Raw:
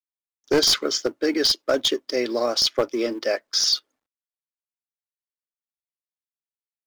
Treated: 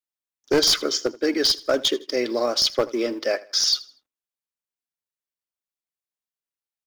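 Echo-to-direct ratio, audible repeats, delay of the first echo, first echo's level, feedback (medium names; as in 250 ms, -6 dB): -19.5 dB, 2, 80 ms, -20.0 dB, 32%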